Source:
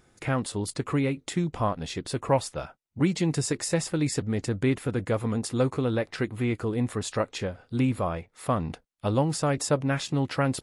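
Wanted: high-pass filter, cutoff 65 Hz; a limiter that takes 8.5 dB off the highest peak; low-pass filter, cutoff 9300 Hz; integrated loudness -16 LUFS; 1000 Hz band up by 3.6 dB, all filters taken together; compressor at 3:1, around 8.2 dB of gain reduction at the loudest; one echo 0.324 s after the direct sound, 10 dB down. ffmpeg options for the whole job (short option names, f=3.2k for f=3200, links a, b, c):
-af "highpass=65,lowpass=9.3k,equalizer=f=1k:t=o:g=4.5,acompressor=threshold=-28dB:ratio=3,alimiter=limit=-24dB:level=0:latency=1,aecho=1:1:324:0.316,volume=18dB"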